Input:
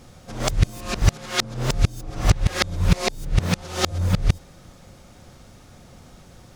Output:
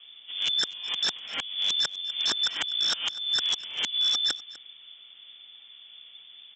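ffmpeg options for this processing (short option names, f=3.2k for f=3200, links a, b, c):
-af "tiltshelf=f=1.2k:g=5,lowpass=f=3.1k:t=q:w=0.5098,lowpass=f=3.1k:t=q:w=0.6013,lowpass=f=3.1k:t=q:w=0.9,lowpass=f=3.1k:t=q:w=2.563,afreqshift=-3600,aresample=16000,aeval=exprs='0.224*(abs(mod(val(0)/0.224+3,4)-2)-1)':c=same,aresample=44100,highpass=190,lowshelf=f=360:g=6,aecho=1:1:249:0.112,afreqshift=-45,volume=-7dB"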